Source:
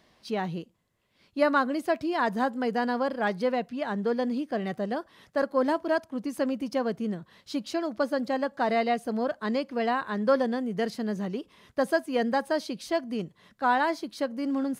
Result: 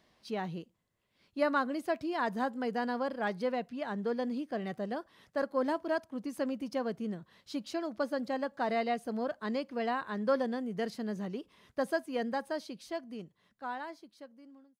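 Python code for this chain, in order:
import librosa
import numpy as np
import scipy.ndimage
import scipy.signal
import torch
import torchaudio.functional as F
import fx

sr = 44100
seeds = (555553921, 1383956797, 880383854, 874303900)

y = fx.fade_out_tail(x, sr, length_s=3.09)
y = y * librosa.db_to_amplitude(-6.0)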